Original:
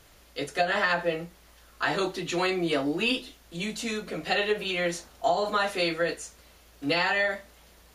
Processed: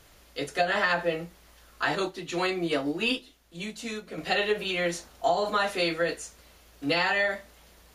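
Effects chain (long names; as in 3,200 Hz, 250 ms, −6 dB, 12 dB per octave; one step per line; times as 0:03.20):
0:01.95–0:04.18: expander for the loud parts 1.5 to 1, over −40 dBFS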